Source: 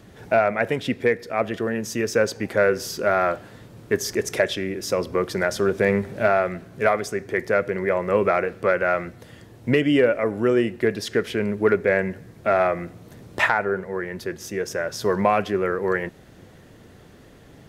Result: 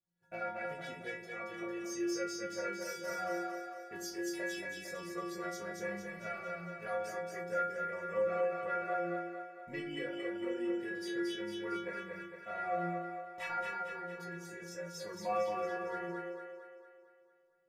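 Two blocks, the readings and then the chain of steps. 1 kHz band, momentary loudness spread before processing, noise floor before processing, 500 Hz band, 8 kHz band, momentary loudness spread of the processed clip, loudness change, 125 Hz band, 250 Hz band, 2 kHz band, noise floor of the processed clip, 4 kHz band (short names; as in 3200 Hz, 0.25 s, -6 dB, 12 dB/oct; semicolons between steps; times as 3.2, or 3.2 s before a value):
-13.0 dB, 8 LU, -48 dBFS, -17.0 dB, -13.0 dB, 9 LU, -16.0 dB, -20.0 dB, -15.0 dB, -16.0 dB, -64 dBFS, -14.0 dB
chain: gate -39 dBFS, range -26 dB; chorus 0.14 Hz, delay 18.5 ms, depth 2 ms; metallic resonator 170 Hz, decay 0.73 s, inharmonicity 0.008; split-band echo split 350 Hz, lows 85 ms, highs 0.227 s, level -3.5 dB; gain +1.5 dB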